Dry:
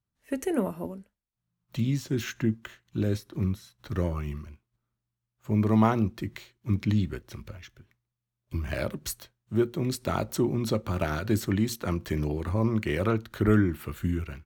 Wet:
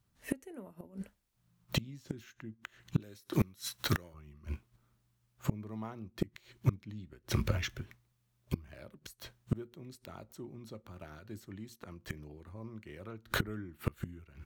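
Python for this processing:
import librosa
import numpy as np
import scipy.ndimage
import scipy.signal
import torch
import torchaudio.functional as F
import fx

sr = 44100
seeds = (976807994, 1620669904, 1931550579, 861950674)

y = fx.tilt_eq(x, sr, slope=2.5, at=(3.0, 4.14))
y = fx.gate_flip(y, sr, shuts_db=-27.0, range_db=-31)
y = y * 10.0 ** (10.5 / 20.0)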